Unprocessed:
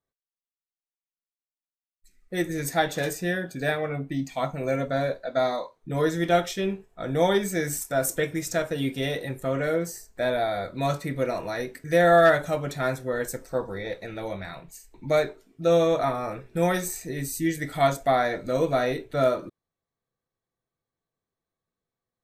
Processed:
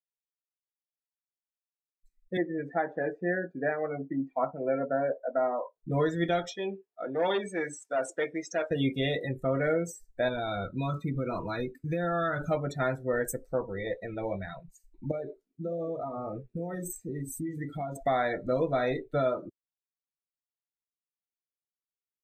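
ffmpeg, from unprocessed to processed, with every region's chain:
ffmpeg -i in.wav -filter_complex "[0:a]asettb=1/sr,asplit=3[link_01][link_02][link_03];[link_01]atrim=end=2.374[link_04];[link_02]atrim=start=2.37:end=5.76,asetpts=PTS-STARTPTS,afade=type=in:duration=0.004:curve=qsin,afade=type=out:start_time=3.386:duration=0.004:curve=qsin,lowpass=3000,acrossover=split=200 2100:gain=0.158 1 0.158[link_05][link_06][link_07];[link_05][link_06][link_07]amix=inputs=3:normalize=0[link_08];[link_03]atrim=start=5.756[link_09];[link_04][link_08]acrossfade=duration=0.004:curve1=hsin:curve2=qsin[link_10];[link_10][link_09]acrossfade=duration=0.004:curve1=qsin:curve2=hsin,asettb=1/sr,asplit=3[link_11][link_12][link_13];[link_11]atrim=end=6.504[link_14];[link_12]atrim=start=6.5:end=8.71,asetpts=PTS-STARTPTS,afade=type=in:duration=0.004:curve=qsin,afade=type=out:start_time=2.206:duration=0.004:curve=qsin,aeval=exprs='(tanh(12.6*val(0)+0.3)-tanh(0.3))/12.6':channel_layout=same,highpass=300,lowpass=5700[link_15];[link_13]atrim=start=8.706[link_16];[link_14][link_15]acrossfade=duration=0.004:curve1=hsin:curve2=qsin[link_17];[link_17][link_16]acrossfade=duration=0.004:curve1=qsin:curve2=hsin,asettb=1/sr,asplit=3[link_18][link_19][link_20];[link_18]atrim=end=10.284[link_21];[link_19]atrim=start=10.28:end=12.51,asetpts=PTS-STARTPTS,afade=type=in:duration=0.004:curve=qsin,afade=type=out:start_time=2.226:duration=0.004:curve=qsin,equalizer=frequency=2400:width_type=o:width=2:gain=-2.5,aecho=1:1:0.8:0.49,atrim=end_sample=98343,acompressor=threshold=-26dB:ratio=6:attack=3.2:release=140:knee=1:detection=peak[link_22];[link_20]atrim=start=12.506[link_23];[link_21][link_22]acrossfade=duration=0.004:curve1=hsin:curve2=qsin[link_24];[link_24][link_23]acrossfade=duration=0.004:curve1=qsin:curve2=hsin,asettb=1/sr,asplit=3[link_25][link_26][link_27];[link_25]atrim=end=15.114[link_28];[link_26]atrim=start=15.11:end=17.96,asetpts=PTS-STARTPTS,afade=type=in:duration=0.004:curve=qsin,afade=type=out:start_time=2.846:duration=0.004:curve=qsin,equalizer=frequency=230:width=0.4:gain=5.5,acompressor=threshold=-26dB:ratio=10:attack=3.2:release=140:knee=1:detection=peak,flanger=delay=3.6:depth=9.8:regen=-77:speed=1.4:shape=triangular[link_29];[link_27]atrim=start=17.956[link_30];[link_28][link_29]acrossfade=duration=0.004:curve1=hsin:curve2=qsin[link_31];[link_31][link_30]acrossfade=duration=0.004:curve1=qsin:curve2=hsin,afftdn=noise_reduction=26:noise_floor=-35,highshelf=frequency=5200:gain=4.5,alimiter=limit=-18dB:level=0:latency=1:release=361" out.wav

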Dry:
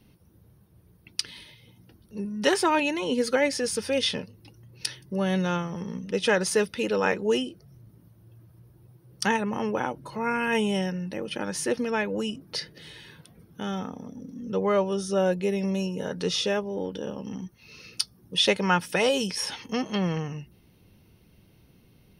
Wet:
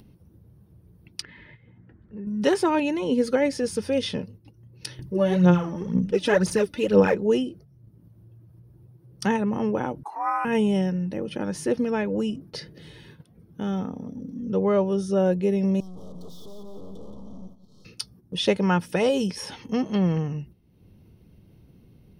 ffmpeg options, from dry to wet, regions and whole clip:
ffmpeg -i in.wav -filter_complex "[0:a]asettb=1/sr,asplit=3[link_01][link_02][link_03];[link_01]atrim=end=1.224[link_04];[link_02]atrim=start=1.22:end=2.27,asetpts=PTS-STARTPTS,afade=type=in:duration=0.004:curve=qsin,afade=type=out:start_time=1.046:duration=0.004:curve=qsin,lowpass=frequency=1800:width_type=q:width=4.4,acompressor=threshold=-41dB:ratio=2.5:attack=3.2:release=140:knee=1:detection=peak[link_05];[link_03]atrim=start=2.266[link_06];[link_04][link_05]acrossfade=duration=0.004:curve1=hsin:curve2=qsin[link_07];[link_07][link_06]acrossfade=duration=0.004:curve1=qsin:curve2=hsin,asettb=1/sr,asplit=3[link_08][link_09][link_10];[link_08]atrim=end=4.994[link_11];[link_09]atrim=start=4.99:end=7.15,asetpts=PTS-STARTPTS,afade=type=in:duration=0.004:curve=qsin,afade=type=out:start_time=2.156:duration=0.004:curve=qsin,acompressor=mode=upward:threshold=-45dB:ratio=2.5:attack=3.2:release=140:knee=2.83:detection=peak,aphaser=in_gain=1:out_gain=1:delay=3.5:decay=0.65:speed=2:type=sinusoidal[link_12];[link_10]atrim=start=7.146[link_13];[link_11][link_12]acrossfade=duration=0.004:curve1=hsin:curve2=qsin[link_14];[link_14][link_13]acrossfade=duration=0.004:curve1=qsin:curve2=hsin,asettb=1/sr,asplit=3[link_15][link_16][link_17];[link_15]atrim=end=10.034[link_18];[link_16]atrim=start=10.03:end=10.45,asetpts=PTS-STARTPTS,afade=type=in:duration=0.004:curve=qsin,afade=type=out:start_time=0.416:duration=0.004:curve=qsin,equalizer=frequency=3500:width_type=o:width=0.84:gain=-13,afreqshift=-160,highpass=frequency=960:width_type=q:width=5.6[link_19];[link_17]atrim=start=10.446[link_20];[link_18][link_19]acrossfade=duration=0.004:curve1=hsin:curve2=qsin[link_21];[link_21][link_20]acrossfade=duration=0.004:curve1=qsin:curve2=hsin,asettb=1/sr,asplit=3[link_22][link_23][link_24];[link_22]atrim=end=15.804[link_25];[link_23]atrim=start=15.8:end=17.85,asetpts=PTS-STARTPTS,afade=type=in:duration=0.004:curve=qsin,afade=type=out:start_time=2.046:duration=0.004:curve=qsin,aeval=exprs='(tanh(178*val(0)+0.75)-tanh(0.75))/178':channel_layout=same,asuperstop=centerf=2000:order=20:qfactor=1.1,aecho=1:1:175|350|525|700|875:0.422|0.186|0.0816|0.0359|0.0158,atrim=end_sample=90405[link_26];[link_24]atrim=start=17.846[link_27];[link_25][link_26]acrossfade=duration=0.004:curve1=hsin:curve2=qsin[link_28];[link_28][link_27]acrossfade=duration=0.004:curve1=qsin:curve2=hsin,agate=range=-9dB:threshold=-48dB:ratio=16:detection=peak,tiltshelf=frequency=700:gain=6,acompressor=mode=upward:threshold=-43dB:ratio=2.5" out.wav

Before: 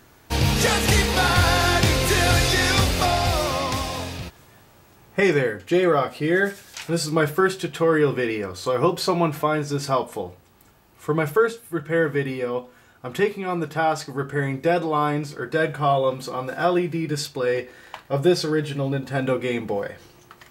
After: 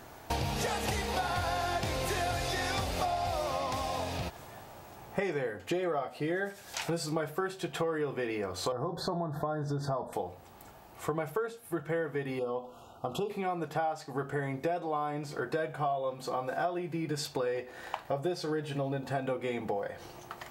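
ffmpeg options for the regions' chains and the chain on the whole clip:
ffmpeg -i in.wav -filter_complex "[0:a]asettb=1/sr,asplit=3[link_01][link_02][link_03];[link_01]atrim=end=8.724[link_04];[link_02]atrim=start=8.72:end=10.13,asetpts=PTS-STARTPTS,afade=type=in:duration=0.004:curve=qsin,afade=type=out:start_time=1.406:duration=0.004:curve=qsin,bass=frequency=250:gain=8,treble=frequency=4000:gain=-10,acompressor=threshold=-25dB:ratio=2:attack=3.2:release=140:knee=1:detection=peak,asuperstop=centerf=2500:order=20:qfactor=1.6[link_05];[link_03]atrim=start=10.126[link_06];[link_04][link_05]acrossfade=duration=0.004:curve1=hsin:curve2=qsin[link_07];[link_07][link_06]acrossfade=duration=0.004:curve1=qsin:curve2=hsin,asettb=1/sr,asplit=3[link_08][link_09][link_10];[link_08]atrim=end=12.394[link_11];[link_09]atrim=start=12.39:end=13.3,asetpts=PTS-STARTPTS,afade=type=in:duration=0.004:curve=qsin,afade=type=out:start_time=0.906:duration=0.004:curve=qsin,highshelf=frequency=6100:gain=-4.5,acompressor=threshold=-32dB:ratio=1.5:attack=3.2:release=140:knee=1:detection=peak,asuperstop=centerf=1900:order=12:qfactor=1.5[link_12];[link_10]atrim=start=13.296[link_13];[link_11][link_12]acrossfade=duration=0.004:curve1=hsin:curve2=qsin[link_14];[link_14][link_13]acrossfade=duration=0.004:curve1=qsin:curve2=hsin,equalizer=frequency=730:width_type=o:width=0.93:gain=9.5,acompressor=threshold=-31dB:ratio=6" out.wav

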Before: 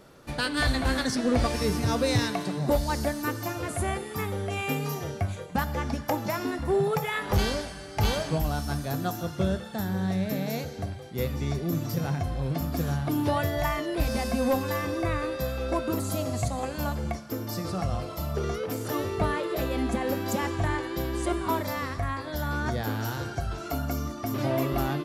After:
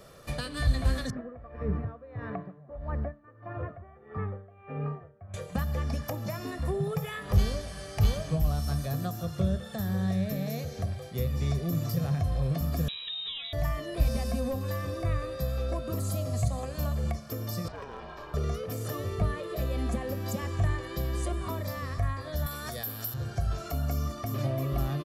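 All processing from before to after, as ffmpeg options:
ffmpeg -i in.wav -filter_complex "[0:a]asettb=1/sr,asplit=3[link_01][link_02][link_03];[link_01]atrim=end=1.104[link_04];[link_02]atrim=start=1.1:end=5.34,asetpts=PTS-STARTPTS,afade=type=in:duration=0.004:curve=qsin,afade=type=out:start_time=4.236:duration=0.004:curve=qsin,lowpass=frequency=1700:width=0.5412,lowpass=frequency=1700:width=1.3066,aeval=exprs='val(0)*pow(10,-25*(0.5-0.5*cos(2*PI*1.6*n/s))/20)':channel_layout=same[link_05];[link_03]atrim=start=5.336[link_06];[link_04][link_05]acrossfade=duration=0.004:curve1=hsin:curve2=qsin[link_07];[link_07][link_06]acrossfade=duration=0.004:curve1=qsin:curve2=hsin,asettb=1/sr,asplit=3[link_08][link_09][link_10];[link_08]atrim=end=12.884[link_11];[link_09]atrim=start=12.88:end=13.53,asetpts=PTS-STARTPTS,afade=type=in:duration=0.004:curve=qsin,afade=type=out:start_time=0.646:duration=0.004:curve=qsin,acrusher=bits=8:mix=0:aa=0.5,lowpass=frequency=3400:width_type=q:width=0.5098,lowpass=frequency=3400:width_type=q:width=0.6013,lowpass=frequency=3400:width_type=q:width=0.9,lowpass=frequency=3400:width_type=q:width=2.563,afreqshift=-4000[link_12];[link_10]atrim=start=13.526[link_13];[link_11][link_12]acrossfade=duration=0.004:curve1=hsin:curve2=qsin[link_14];[link_14][link_13]acrossfade=duration=0.004:curve1=qsin:curve2=hsin,asettb=1/sr,asplit=3[link_15][link_16][link_17];[link_15]atrim=end=17.684[link_18];[link_16]atrim=start=17.68:end=18.34,asetpts=PTS-STARTPTS,afade=type=in:duration=0.004:curve=qsin,afade=type=out:start_time=0.656:duration=0.004:curve=qsin,highpass=390,lowpass=2600,aeval=exprs='clip(val(0),-1,0.0237)':channel_layout=same,aeval=exprs='val(0)*sin(2*PI*280*n/s)':channel_layout=same[link_19];[link_17]atrim=start=18.336[link_20];[link_18][link_19]acrossfade=duration=0.004:curve1=hsin:curve2=qsin[link_21];[link_21][link_20]acrossfade=duration=0.004:curve1=qsin:curve2=hsin,asettb=1/sr,asplit=3[link_22][link_23][link_24];[link_22]atrim=end=22.464[link_25];[link_23]atrim=start=22.46:end=23.14,asetpts=PTS-STARTPTS,afade=type=in:duration=0.004:curve=qsin,afade=type=out:start_time=0.676:duration=0.004:curve=qsin,aemphasis=mode=production:type=riaa,bandreject=frequency=6400:width=6.1[link_26];[link_24]atrim=start=23.136[link_27];[link_25][link_26]acrossfade=duration=0.004:curve1=hsin:curve2=qsin[link_28];[link_28][link_27]acrossfade=duration=0.004:curve1=qsin:curve2=hsin,highshelf=frequency=6100:gain=4.5,aecho=1:1:1.7:0.51,acrossover=split=290[link_29][link_30];[link_30]acompressor=threshold=-39dB:ratio=3[link_31];[link_29][link_31]amix=inputs=2:normalize=0" out.wav

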